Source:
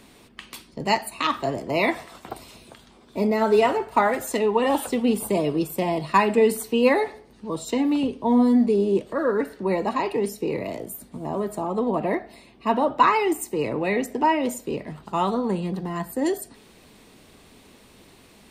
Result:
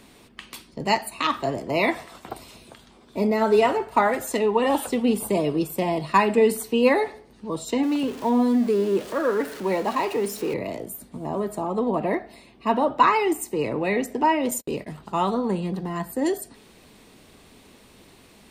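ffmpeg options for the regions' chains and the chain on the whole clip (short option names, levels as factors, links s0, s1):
-filter_complex "[0:a]asettb=1/sr,asplit=3[s0][s1][s2];[s0]atrim=end=7.834[s3];[s1]atrim=start=7.83:end=10.54,asetpts=PTS-STARTPTS,afade=t=in:d=0.004:c=qsin,afade=t=out:st=2.706:d=0.004:c=qsin,aeval=exprs='val(0)+0.5*0.0211*sgn(val(0))':c=same,lowshelf=f=150:g=-11[s4];[s2]atrim=start=10.536[s5];[s3][s4]acrossfade=d=0.004:c1=hsin:c2=qsin[s6];[s6][s5]acrossfade=d=0.004:c1=qsin:c2=hsin,asettb=1/sr,asplit=3[s7][s8][s9];[s7]atrim=end=14.514[s10];[s8]atrim=start=14.51:end=14.97,asetpts=PTS-STARTPTS,afade=t=in:d=0.004:c=qsin,afade=t=out:st=0.456:d=0.004:c=qsin,agate=range=0.0126:threshold=0.01:ratio=16:release=100:detection=peak,aemphasis=mode=production:type=cd[s11];[s9]atrim=start=14.966[s12];[s10][s11]acrossfade=d=0.004:c1=hsin:c2=qsin[s13];[s13][s12]acrossfade=d=0.004:c1=qsin:c2=hsin"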